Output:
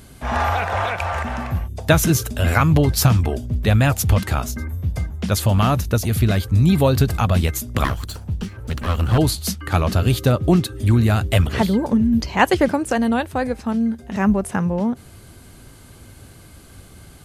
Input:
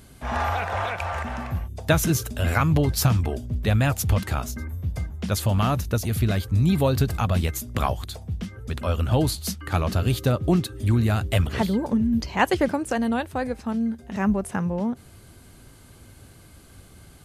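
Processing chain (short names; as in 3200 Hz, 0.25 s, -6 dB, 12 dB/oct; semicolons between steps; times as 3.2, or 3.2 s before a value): 7.84–9.18 minimum comb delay 0.68 ms; gain +5 dB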